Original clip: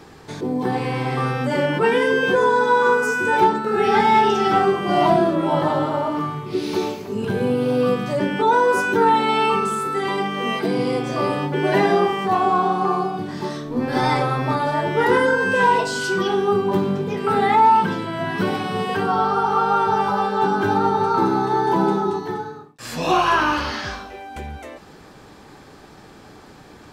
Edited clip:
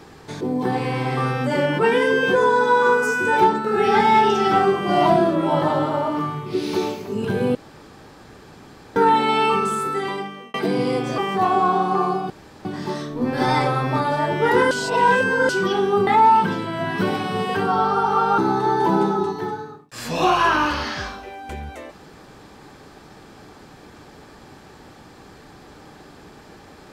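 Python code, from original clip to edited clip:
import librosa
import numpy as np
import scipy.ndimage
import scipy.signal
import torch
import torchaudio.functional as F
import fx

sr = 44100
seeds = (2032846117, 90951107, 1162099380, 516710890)

y = fx.edit(x, sr, fx.room_tone_fill(start_s=7.55, length_s=1.41),
    fx.fade_out_span(start_s=9.89, length_s=0.65),
    fx.cut(start_s=11.18, length_s=0.9),
    fx.insert_room_tone(at_s=13.2, length_s=0.35),
    fx.reverse_span(start_s=15.26, length_s=0.78),
    fx.cut(start_s=16.62, length_s=0.85),
    fx.cut(start_s=19.78, length_s=1.47), tone=tone)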